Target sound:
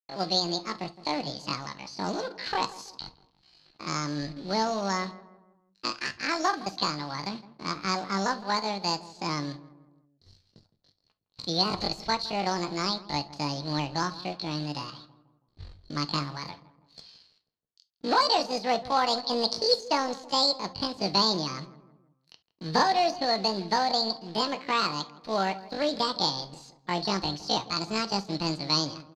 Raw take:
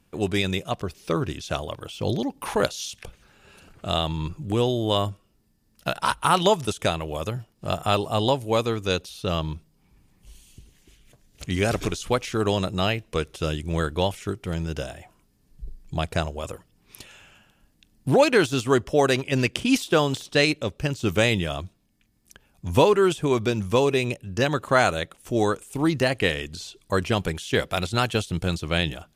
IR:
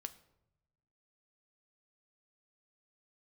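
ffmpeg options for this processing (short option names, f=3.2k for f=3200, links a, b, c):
-filter_complex "[0:a]acrossover=split=320|890|3200[a][b][c][d];[c]acompressor=threshold=-37dB:ratio=20[e];[a][b][e][d]amix=inputs=4:normalize=0,aeval=exprs='sgn(val(0))*max(abs(val(0))-0.00335,0)':c=same,acrusher=bits=4:mode=log:mix=0:aa=0.000001,asetrate=80880,aresample=44100,atempo=0.545254,lowpass=f=4.3k:t=q:w=11,asplit=2[f][g];[g]adelay=163,lowpass=f=1.2k:p=1,volume=-16dB,asplit=2[h][i];[i]adelay=163,lowpass=f=1.2k:p=1,volume=0.5,asplit=2[j][k];[k]adelay=163,lowpass=f=1.2k:p=1,volume=0.5,asplit=2[l][m];[m]adelay=163,lowpass=f=1.2k:p=1,volume=0.5[n];[f][h][j][l][n]amix=inputs=5:normalize=0[o];[1:a]atrim=start_sample=2205,atrim=end_sample=3528[p];[o][p]afir=irnorm=-1:irlink=0,volume=-1.5dB"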